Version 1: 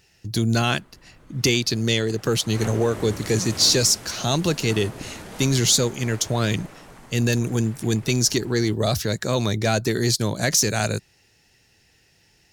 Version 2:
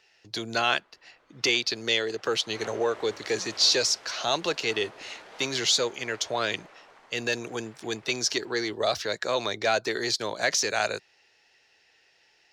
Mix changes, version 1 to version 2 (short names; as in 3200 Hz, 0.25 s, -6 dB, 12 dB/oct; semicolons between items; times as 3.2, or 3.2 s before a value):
background -5.0 dB; master: add three-band isolator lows -23 dB, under 410 Hz, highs -21 dB, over 5500 Hz